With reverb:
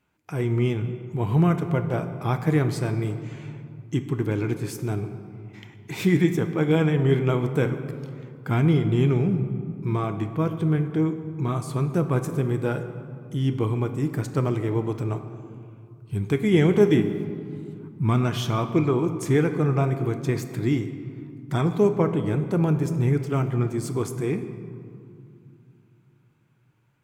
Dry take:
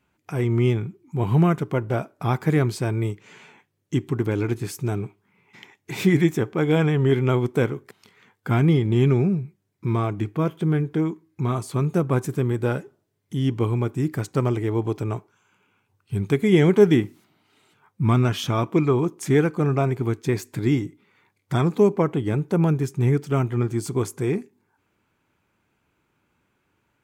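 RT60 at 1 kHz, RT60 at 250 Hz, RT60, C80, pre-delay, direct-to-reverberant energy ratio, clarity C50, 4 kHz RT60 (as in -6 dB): 2.4 s, 3.5 s, 2.5 s, 11.0 dB, 6 ms, 8.0 dB, 10.0 dB, 1.4 s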